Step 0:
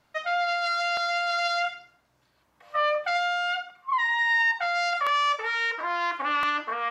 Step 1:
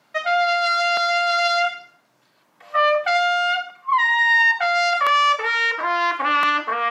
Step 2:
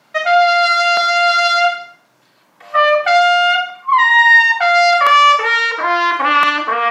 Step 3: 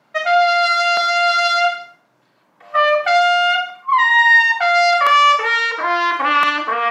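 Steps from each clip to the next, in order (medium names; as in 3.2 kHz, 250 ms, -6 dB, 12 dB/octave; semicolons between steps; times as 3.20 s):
high-pass 150 Hz 24 dB/octave; trim +7 dB
Schroeder reverb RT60 0.4 s, combs from 33 ms, DRR 8.5 dB; trim +6 dB
tape noise reduction on one side only decoder only; trim -2.5 dB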